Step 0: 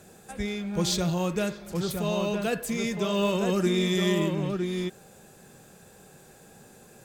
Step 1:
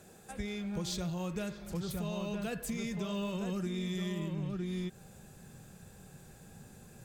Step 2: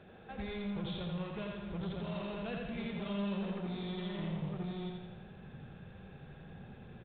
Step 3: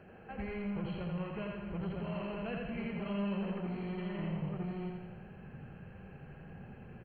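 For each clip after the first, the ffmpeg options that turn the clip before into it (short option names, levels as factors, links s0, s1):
-af "asubboost=boost=3.5:cutoff=200,acompressor=threshold=0.0355:ratio=6,volume=0.596"
-af "aresample=8000,asoftclip=type=tanh:threshold=0.0126,aresample=44100,aecho=1:1:85|170|255|340|425|510|595|680:0.668|0.368|0.202|0.111|0.0612|0.0336|0.0185|0.0102,volume=1.12"
-af "asuperstop=centerf=3600:order=8:qfactor=3.7,volume=1.12"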